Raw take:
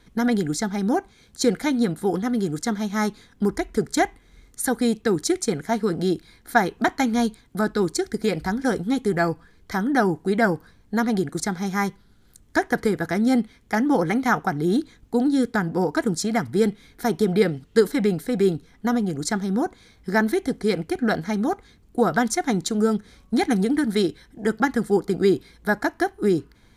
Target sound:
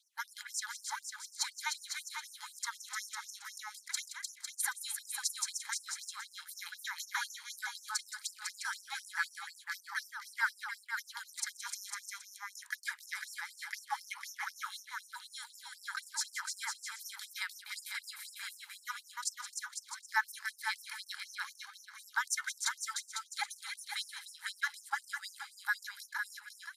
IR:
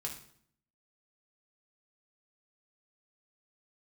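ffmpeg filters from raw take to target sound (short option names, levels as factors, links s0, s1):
-af "aecho=1:1:171|302|502|657|775:0.251|0.562|0.473|0.299|0.133,afftfilt=real='re*gte(b*sr/1024,800*pow(5400/800,0.5+0.5*sin(2*PI*4*pts/sr)))':imag='im*gte(b*sr/1024,800*pow(5400/800,0.5+0.5*sin(2*PI*4*pts/sr)))':win_size=1024:overlap=0.75,volume=0.447"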